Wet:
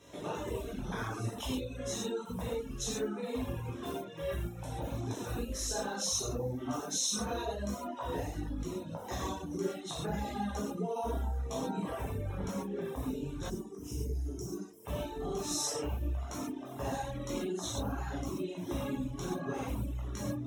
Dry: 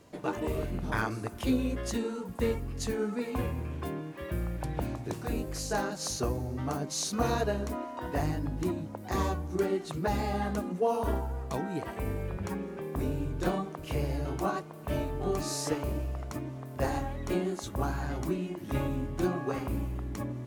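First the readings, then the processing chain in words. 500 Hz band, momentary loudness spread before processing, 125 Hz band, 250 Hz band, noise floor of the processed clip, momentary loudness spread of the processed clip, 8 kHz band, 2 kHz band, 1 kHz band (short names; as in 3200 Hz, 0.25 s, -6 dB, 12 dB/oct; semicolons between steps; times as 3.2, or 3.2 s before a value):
-4.5 dB, 6 LU, -4.5 dB, -4.5 dB, -45 dBFS, 7 LU, +2.5 dB, -6.5 dB, -5.0 dB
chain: chorus voices 6, 0.69 Hz, delay 18 ms, depth 2.2 ms; limiter -26.5 dBFS, peak gain reduction 7.5 dB; HPF 91 Hz 6 dB/oct; compressor 5:1, threshold -38 dBFS, peak gain reduction 7 dB; Butterworth band-stop 4600 Hz, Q 2.9; bell 4500 Hz +14.5 dB 0.78 oct; non-linear reverb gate 0.16 s flat, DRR -6.5 dB; reverb removal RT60 0.89 s; spectral gain 13.5–14.86, 460–4600 Hz -19 dB; dynamic EQ 2100 Hz, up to -5 dB, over -58 dBFS, Q 1.3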